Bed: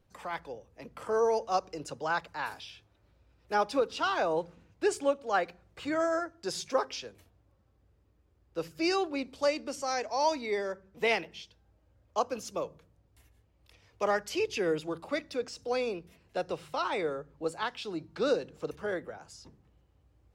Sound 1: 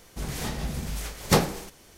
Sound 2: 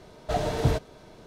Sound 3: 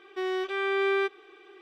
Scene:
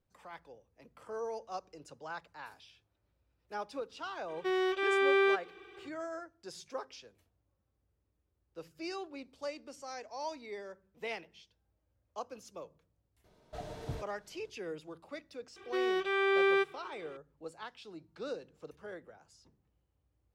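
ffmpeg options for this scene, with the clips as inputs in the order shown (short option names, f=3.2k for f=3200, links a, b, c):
-filter_complex "[3:a]asplit=2[a][b];[0:a]volume=-12dB[c];[a]atrim=end=1.61,asetpts=PTS-STARTPTS,volume=-1dB,afade=t=in:d=0.004:c=hsin,afade=t=out:st=1.606:d=0.004:c=hsin,adelay=4280[d];[2:a]atrim=end=1.26,asetpts=PTS-STARTPTS,volume=-16.5dB,afade=t=in:d=0.004:c=hsin,afade=t=out:st=1.256:d=0.004:c=hsin,adelay=13240[e];[b]atrim=end=1.61,asetpts=PTS-STARTPTS,volume=-1.5dB,afade=t=in:d=0.004:c=hsin,afade=t=out:st=1.606:d=0.004:c=hsin,adelay=686196S[f];[c][d][e][f]amix=inputs=4:normalize=0"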